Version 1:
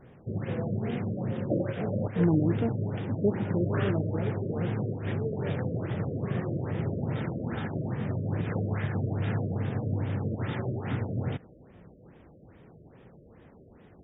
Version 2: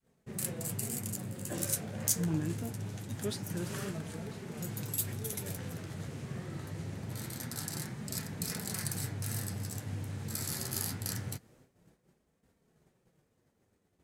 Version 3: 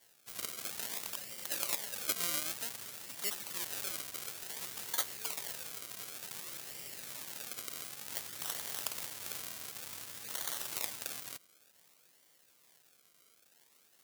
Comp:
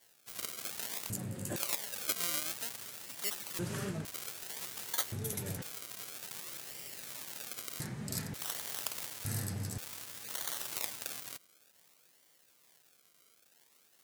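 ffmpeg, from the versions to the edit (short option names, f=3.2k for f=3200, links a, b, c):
-filter_complex "[1:a]asplit=5[a][b][c][d][e];[2:a]asplit=6[f][g][h][i][j][k];[f]atrim=end=1.102[l];[a]atrim=start=1.098:end=1.562[m];[g]atrim=start=1.558:end=3.592[n];[b]atrim=start=3.588:end=4.052[o];[h]atrim=start=4.048:end=5.122[p];[c]atrim=start=5.118:end=5.622[q];[i]atrim=start=5.618:end=7.802[r];[d]atrim=start=7.798:end=8.342[s];[j]atrim=start=8.338:end=9.252[t];[e]atrim=start=9.248:end=9.782[u];[k]atrim=start=9.778[v];[l][m]acrossfade=d=0.004:c1=hsin:c2=hsin[w];[w][n]acrossfade=d=0.004:c1=hsin:c2=hsin[x];[x][o]acrossfade=d=0.004:c1=hsin:c2=hsin[y];[y][p]acrossfade=d=0.004:c1=hsin:c2=hsin[z];[z][q]acrossfade=d=0.004:c1=hsin:c2=hsin[aa];[aa][r]acrossfade=d=0.004:c1=hsin:c2=hsin[ab];[ab][s]acrossfade=d=0.004:c1=hsin:c2=hsin[ac];[ac][t]acrossfade=d=0.004:c1=hsin:c2=hsin[ad];[ad][u]acrossfade=d=0.004:c1=hsin:c2=hsin[ae];[ae][v]acrossfade=d=0.004:c1=hsin:c2=hsin"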